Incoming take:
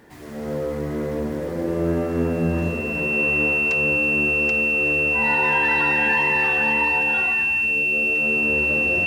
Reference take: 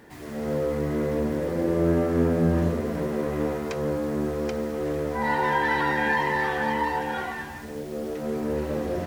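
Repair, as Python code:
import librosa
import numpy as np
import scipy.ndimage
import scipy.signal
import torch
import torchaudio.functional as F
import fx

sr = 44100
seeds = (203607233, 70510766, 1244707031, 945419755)

y = fx.notch(x, sr, hz=2700.0, q=30.0)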